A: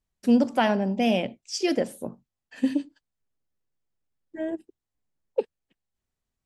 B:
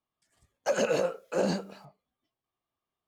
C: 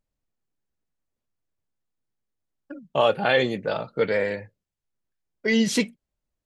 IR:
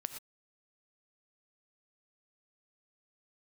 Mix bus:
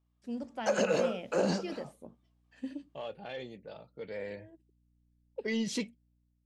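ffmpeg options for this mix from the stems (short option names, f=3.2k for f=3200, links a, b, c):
-filter_complex "[0:a]volume=-20dB[a];[1:a]volume=-2dB[b];[2:a]equalizer=f=1.4k:t=o:w=0.91:g=-7,asoftclip=type=tanh:threshold=-10.5dB,volume=-13dB,afade=t=in:st=4.03:d=0.54:silence=0.298538,asplit=2[c][d];[d]apad=whole_len=284562[e];[a][e]sidechaincompress=threshold=-56dB:ratio=4:attack=46:release=848[f];[b][c]amix=inputs=2:normalize=0,aeval=exprs='val(0)+0.0002*(sin(2*PI*60*n/s)+sin(2*PI*2*60*n/s)/2+sin(2*PI*3*60*n/s)/3+sin(2*PI*4*60*n/s)/4+sin(2*PI*5*60*n/s)/5)':c=same,acompressor=threshold=-36dB:ratio=1.5,volume=0dB[g];[f][g]amix=inputs=2:normalize=0,lowpass=8.4k,dynaudnorm=f=140:g=7:m=4.5dB"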